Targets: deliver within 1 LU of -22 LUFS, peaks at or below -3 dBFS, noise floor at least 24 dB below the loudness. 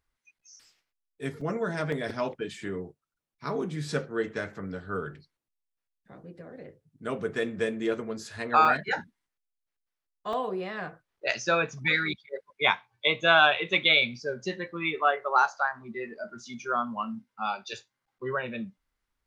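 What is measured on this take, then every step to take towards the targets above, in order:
dropouts 4; longest dropout 3.5 ms; loudness -28.0 LUFS; peak -6.0 dBFS; loudness target -22.0 LUFS
-> interpolate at 1.41/1.92/8.65/10.33, 3.5 ms; gain +6 dB; limiter -3 dBFS

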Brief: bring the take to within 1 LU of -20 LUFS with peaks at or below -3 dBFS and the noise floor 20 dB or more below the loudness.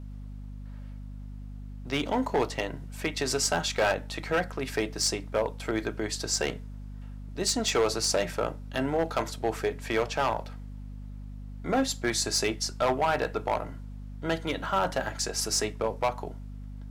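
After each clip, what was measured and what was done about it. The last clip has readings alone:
clipped 0.9%; flat tops at -19.0 dBFS; hum 50 Hz; harmonics up to 250 Hz; hum level -38 dBFS; loudness -29.0 LUFS; peak -19.0 dBFS; loudness target -20.0 LUFS
-> clip repair -19 dBFS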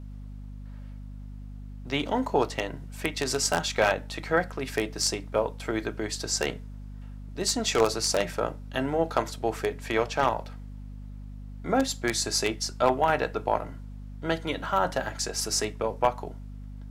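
clipped 0.0%; hum 50 Hz; harmonics up to 250 Hz; hum level -38 dBFS
-> notches 50/100/150/200/250 Hz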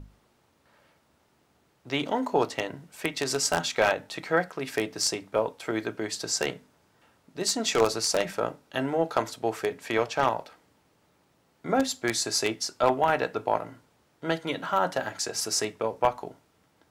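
hum none; loudness -28.0 LUFS; peak -9.5 dBFS; loudness target -20.0 LUFS
-> gain +8 dB; limiter -3 dBFS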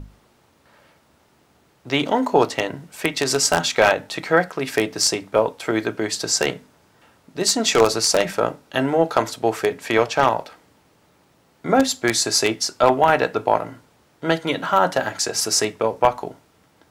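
loudness -20.0 LUFS; peak -3.0 dBFS; noise floor -59 dBFS

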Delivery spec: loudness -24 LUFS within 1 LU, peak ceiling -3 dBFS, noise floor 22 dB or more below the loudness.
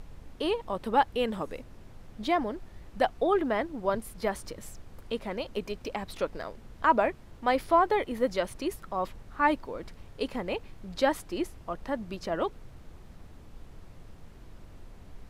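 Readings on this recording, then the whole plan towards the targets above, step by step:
noise floor -50 dBFS; noise floor target -53 dBFS; loudness -30.5 LUFS; peak -11.5 dBFS; loudness target -24.0 LUFS
-> noise print and reduce 6 dB; gain +6.5 dB

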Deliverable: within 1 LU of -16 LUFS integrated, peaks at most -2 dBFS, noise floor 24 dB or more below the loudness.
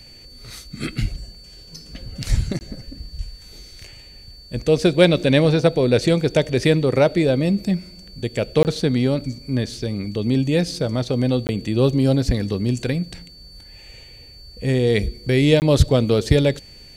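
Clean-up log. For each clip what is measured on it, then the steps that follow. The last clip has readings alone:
dropouts 4; longest dropout 19 ms; steady tone 4500 Hz; tone level -43 dBFS; loudness -19.5 LUFS; peak -2.0 dBFS; loudness target -16.0 LUFS
-> interpolate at 2.59/8.63/11.47/15.6, 19 ms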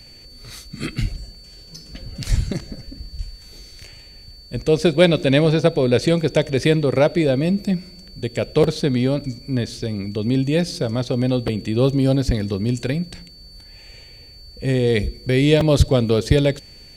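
dropouts 0; steady tone 4500 Hz; tone level -43 dBFS
-> notch 4500 Hz, Q 30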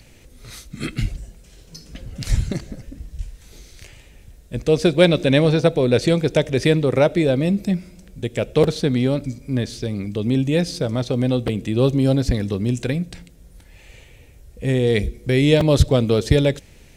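steady tone none; loudness -19.5 LUFS; peak -2.0 dBFS; loudness target -16.0 LUFS
-> gain +3.5 dB; limiter -2 dBFS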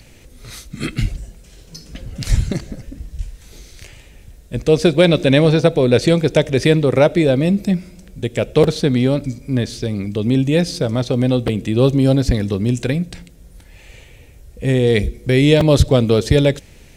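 loudness -16.5 LUFS; peak -2.0 dBFS; noise floor -44 dBFS

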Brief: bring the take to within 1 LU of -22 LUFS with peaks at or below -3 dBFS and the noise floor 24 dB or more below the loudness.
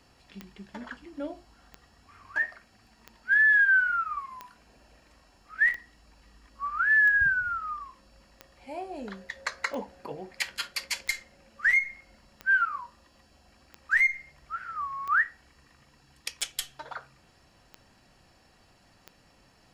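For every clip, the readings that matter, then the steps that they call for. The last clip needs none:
clicks 15; loudness -26.0 LUFS; peak -10.0 dBFS; loudness target -22.0 LUFS
-> de-click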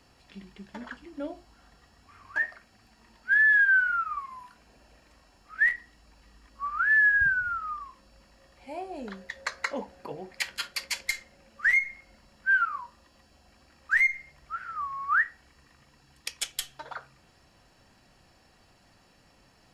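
clicks 0; loudness -26.0 LUFS; peak -10.0 dBFS; loudness target -22.0 LUFS
-> gain +4 dB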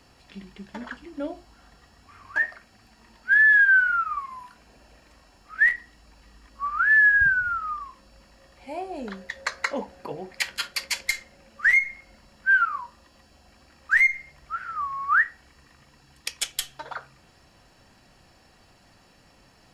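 loudness -22.0 LUFS; peak -6.0 dBFS; noise floor -58 dBFS

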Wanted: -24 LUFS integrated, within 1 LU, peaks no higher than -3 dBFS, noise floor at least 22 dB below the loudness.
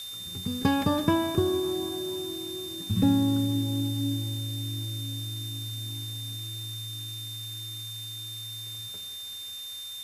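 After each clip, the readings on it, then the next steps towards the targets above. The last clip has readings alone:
steady tone 3600 Hz; tone level -37 dBFS; noise floor -39 dBFS; noise floor target -52 dBFS; loudness -30.0 LUFS; peak -10.5 dBFS; loudness target -24.0 LUFS
-> notch 3600 Hz, Q 30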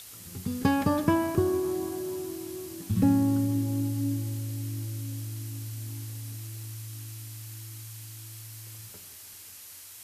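steady tone none; noise floor -47 dBFS; noise floor target -52 dBFS
-> denoiser 6 dB, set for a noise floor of -47 dBFS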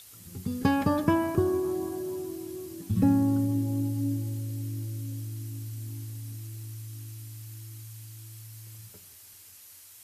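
noise floor -51 dBFS; noise floor target -52 dBFS
-> denoiser 6 dB, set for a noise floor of -51 dBFS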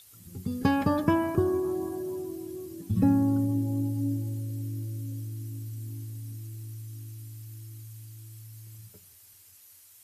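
noise floor -55 dBFS; loudness -30.0 LUFS; peak -11.0 dBFS; loudness target -24.0 LUFS
-> gain +6 dB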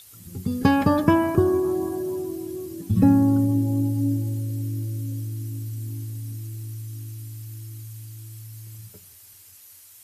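loudness -24.0 LUFS; peak -5.0 dBFS; noise floor -49 dBFS

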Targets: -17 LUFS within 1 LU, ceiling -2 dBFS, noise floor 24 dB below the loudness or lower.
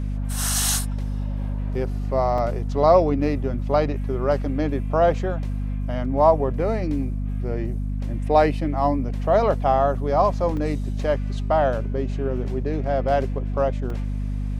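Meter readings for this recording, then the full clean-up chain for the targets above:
dropouts 4; longest dropout 2.2 ms; hum 50 Hz; harmonics up to 250 Hz; hum level -23 dBFS; loudness -23.0 LUFS; peak -4.5 dBFS; loudness target -17.0 LUFS
-> interpolate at 0.49/2.38/10.57/13.9, 2.2 ms; notches 50/100/150/200/250 Hz; gain +6 dB; limiter -2 dBFS

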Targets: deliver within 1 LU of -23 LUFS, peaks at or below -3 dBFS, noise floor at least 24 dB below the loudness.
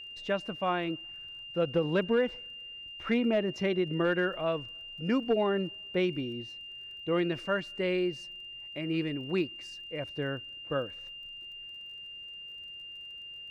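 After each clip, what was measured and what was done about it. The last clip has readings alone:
ticks 29/s; steady tone 2800 Hz; tone level -42 dBFS; loudness -32.5 LUFS; peak -18.0 dBFS; loudness target -23.0 LUFS
-> de-click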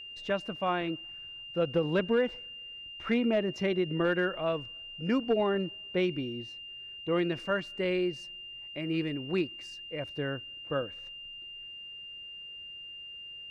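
ticks 0/s; steady tone 2800 Hz; tone level -42 dBFS
-> notch 2800 Hz, Q 30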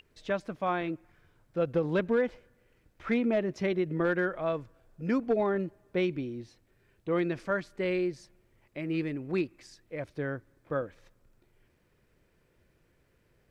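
steady tone none; loudness -31.5 LUFS; peak -18.0 dBFS; loudness target -23.0 LUFS
-> gain +8.5 dB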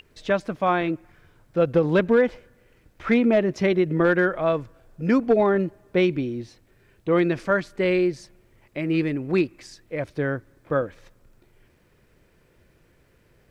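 loudness -23.0 LUFS; peak -9.5 dBFS; noise floor -61 dBFS

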